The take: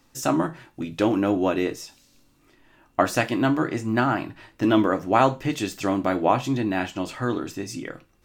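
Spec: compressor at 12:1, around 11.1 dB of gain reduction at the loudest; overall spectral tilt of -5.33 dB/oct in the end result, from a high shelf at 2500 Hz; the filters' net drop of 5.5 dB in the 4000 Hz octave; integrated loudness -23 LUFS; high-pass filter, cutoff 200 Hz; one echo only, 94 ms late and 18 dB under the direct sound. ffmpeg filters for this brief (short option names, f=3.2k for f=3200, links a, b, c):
-af "highpass=200,highshelf=f=2.5k:g=-4.5,equalizer=f=4k:t=o:g=-3.5,acompressor=threshold=-25dB:ratio=12,aecho=1:1:94:0.126,volume=9dB"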